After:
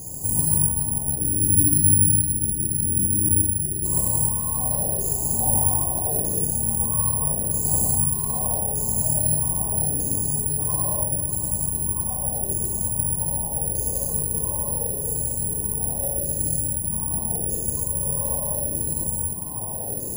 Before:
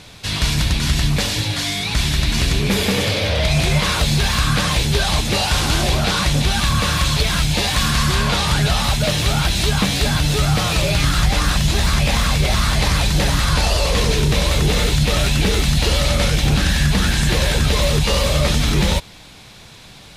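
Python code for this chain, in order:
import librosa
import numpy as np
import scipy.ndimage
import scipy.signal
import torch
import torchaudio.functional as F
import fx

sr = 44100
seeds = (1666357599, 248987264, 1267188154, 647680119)

p1 = fx.spec_box(x, sr, start_s=1.21, length_s=2.64, low_hz=370.0, high_hz=11000.0, gain_db=-29)
p2 = np.clip(p1, -10.0 ** (-19.0 / 20.0), 10.0 ** (-19.0 / 20.0))
p3 = p1 + F.gain(torch.from_numpy(p2), -11.0).numpy()
p4 = fx.filter_lfo_lowpass(p3, sr, shape='saw_down', hz=0.8, low_hz=340.0, high_hz=4400.0, q=7.9)
p5 = fx.peak_eq(p4, sr, hz=2800.0, db=-13.5, octaves=2.7)
p6 = 10.0 ** (-6.0 / 20.0) * np.tanh(p5 / 10.0 ** (-6.0 / 20.0))
p7 = fx.peak_eq(p6, sr, hz=130.0, db=4.5, octaves=2.7)
p8 = fx.over_compress(p7, sr, threshold_db=-23.0, ratio=-1.0)
p9 = p8 + 10.0 ** (-14.5 / 20.0) * np.pad(p8, (int(501 * sr / 1000.0), 0))[:len(p8)]
p10 = fx.rev_gated(p9, sr, seeds[0], gate_ms=340, shape='flat', drr_db=-7.5)
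p11 = (np.kron(scipy.signal.resample_poly(p10, 1, 4), np.eye(4)[0]) * 4)[:len(p10)]
p12 = fx.brickwall_bandstop(p11, sr, low_hz=1100.0, high_hz=4600.0)
y = F.gain(torch.from_numpy(p12), -14.5).numpy()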